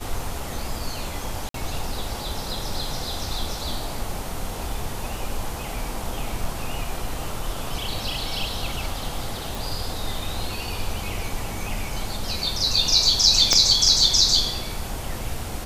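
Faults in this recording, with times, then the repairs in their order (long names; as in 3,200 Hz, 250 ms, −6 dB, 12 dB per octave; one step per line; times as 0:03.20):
0:01.49–0:01.54: drop-out 53 ms
0:09.55: click
0:13.53: click −3 dBFS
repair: click removal
repair the gap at 0:01.49, 53 ms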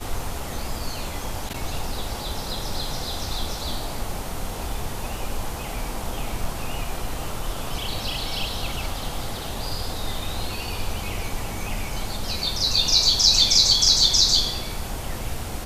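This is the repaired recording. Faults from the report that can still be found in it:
0:13.53: click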